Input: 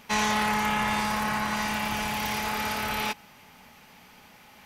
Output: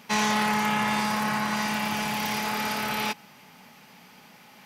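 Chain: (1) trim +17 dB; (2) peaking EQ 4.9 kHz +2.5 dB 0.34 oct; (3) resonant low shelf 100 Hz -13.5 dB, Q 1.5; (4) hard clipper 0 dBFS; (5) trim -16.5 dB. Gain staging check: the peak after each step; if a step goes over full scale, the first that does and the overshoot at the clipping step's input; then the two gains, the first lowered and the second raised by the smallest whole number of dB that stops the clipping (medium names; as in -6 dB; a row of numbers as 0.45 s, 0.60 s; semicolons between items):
+3.5 dBFS, +4.0 dBFS, +4.5 dBFS, 0.0 dBFS, -16.5 dBFS; step 1, 4.5 dB; step 1 +12 dB, step 5 -11.5 dB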